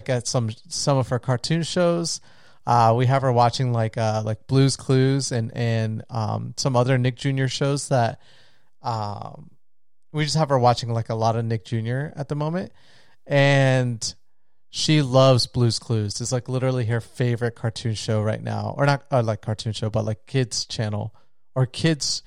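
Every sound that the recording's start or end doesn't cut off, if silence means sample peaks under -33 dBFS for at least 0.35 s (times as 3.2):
2.67–8.14
8.84–9.4
10.14–12.66
13.29–14.11
14.74–21.08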